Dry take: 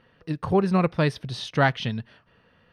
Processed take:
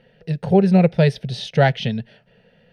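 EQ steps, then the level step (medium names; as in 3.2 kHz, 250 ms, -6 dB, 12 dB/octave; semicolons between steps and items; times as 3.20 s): treble shelf 4.3 kHz -9 dB; static phaser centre 300 Hz, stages 6; +8.5 dB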